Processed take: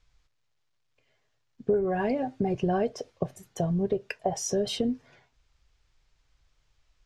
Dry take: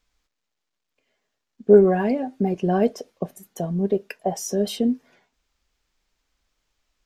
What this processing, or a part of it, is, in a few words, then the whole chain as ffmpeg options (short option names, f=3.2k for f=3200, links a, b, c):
jukebox: -af "lowpass=7.2k,lowshelf=f=160:t=q:w=3:g=7,acompressor=threshold=-24dB:ratio=6,volume=1dB"